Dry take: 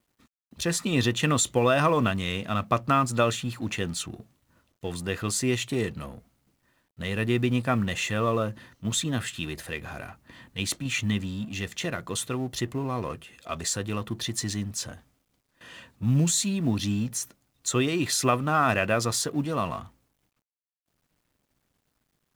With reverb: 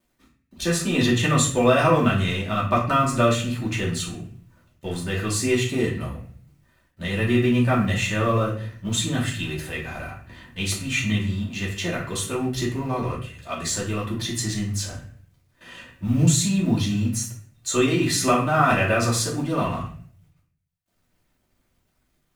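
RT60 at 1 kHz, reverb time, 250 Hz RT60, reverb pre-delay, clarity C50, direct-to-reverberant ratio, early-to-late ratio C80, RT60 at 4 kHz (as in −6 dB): 0.45 s, 0.50 s, 0.75 s, 3 ms, 6.5 dB, −5.5 dB, 11.0 dB, 0.40 s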